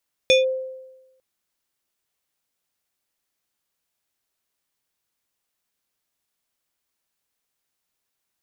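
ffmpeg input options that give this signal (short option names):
-f lavfi -i "aevalsrc='0.316*pow(10,-3*t/1.06)*sin(2*PI*521*t+1.1*clip(1-t/0.15,0,1)*sin(2*PI*5.72*521*t))':d=0.9:s=44100"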